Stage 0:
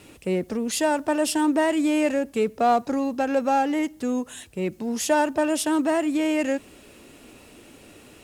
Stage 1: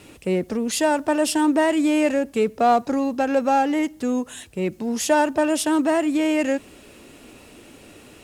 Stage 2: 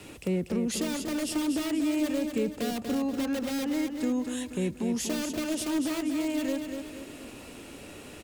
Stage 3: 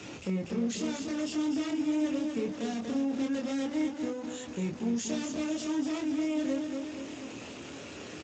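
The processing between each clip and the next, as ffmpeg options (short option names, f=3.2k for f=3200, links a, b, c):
-af "highshelf=f=12k:g=-3,volume=2.5dB"
-filter_complex "[0:a]acrossover=split=200[a][b];[b]acompressor=threshold=-35dB:ratio=2.5[c];[a][c]amix=inputs=2:normalize=0,acrossover=split=580|2400[d][e][f];[e]aeval=exprs='(mod(53.1*val(0)+1,2)-1)/53.1':c=same[g];[d][g][f]amix=inputs=3:normalize=0,aecho=1:1:240|480|720|960|1200:0.473|0.199|0.0835|0.0351|0.0147"
-filter_complex "[0:a]aeval=exprs='val(0)+0.5*0.0188*sgn(val(0))':c=same,asplit=2[a][b];[b]adelay=26,volume=-3dB[c];[a][c]amix=inputs=2:normalize=0,volume=-7dB" -ar 16000 -c:a libspeex -b:a 17k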